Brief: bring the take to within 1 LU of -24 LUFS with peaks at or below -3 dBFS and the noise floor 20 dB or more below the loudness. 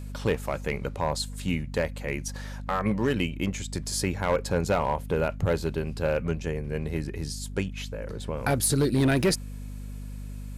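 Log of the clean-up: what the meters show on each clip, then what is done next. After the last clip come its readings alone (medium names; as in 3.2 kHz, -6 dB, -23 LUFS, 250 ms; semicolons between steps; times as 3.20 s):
clipped samples 0.7%; clipping level -17.0 dBFS; hum 50 Hz; highest harmonic 250 Hz; hum level -35 dBFS; loudness -28.5 LUFS; peak level -17.0 dBFS; loudness target -24.0 LUFS
-> clip repair -17 dBFS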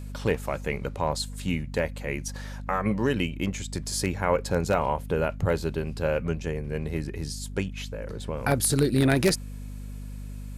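clipped samples 0.0%; hum 50 Hz; highest harmonic 250 Hz; hum level -34 dBFS
-> hum notches 50/100/150/200/250 Hz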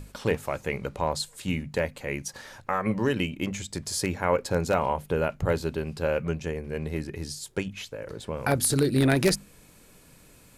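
hum not found; loudness -28.0 LUFS; peak level -8.0 dBFS; loudness target -24.0 LUFS
-> trim +4 dB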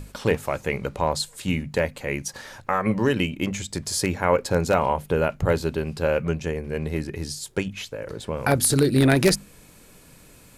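loudness -24.0 LUFS; peak level -4.0 dBFS; noise floor -51 dBFS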